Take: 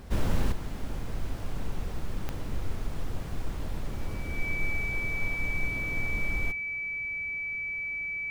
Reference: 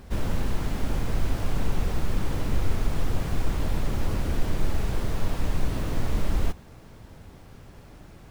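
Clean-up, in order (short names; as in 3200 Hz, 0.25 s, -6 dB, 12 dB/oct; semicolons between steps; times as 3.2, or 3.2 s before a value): de-click; notch 2300 Hz, Q 30; gain 0 dB, from 0.52 s +8 dB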